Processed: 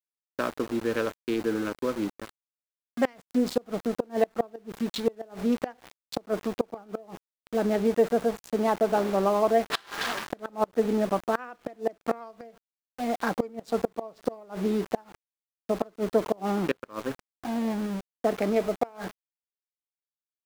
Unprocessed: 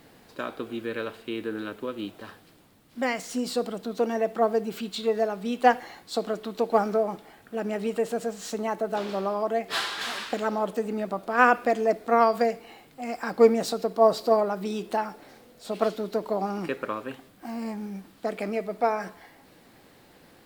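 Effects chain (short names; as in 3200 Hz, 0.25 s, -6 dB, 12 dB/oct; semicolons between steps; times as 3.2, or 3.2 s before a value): Wiener smoothing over 15 samples; sample gate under -39.5 dBFS; flipped gate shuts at -17 dBFS, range -28 dB; gain +5 dB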